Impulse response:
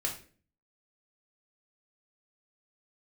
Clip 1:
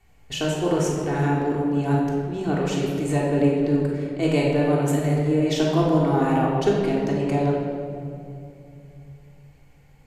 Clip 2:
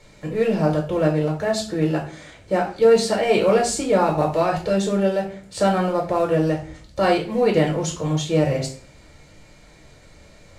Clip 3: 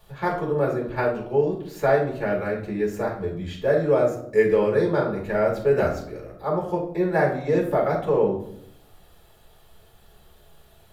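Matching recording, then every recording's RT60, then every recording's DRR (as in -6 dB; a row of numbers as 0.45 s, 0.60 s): 2; 2.6 s, 0.40 s, 0.70 s; -4.5 dB, 0.0 dB, -3.0 dB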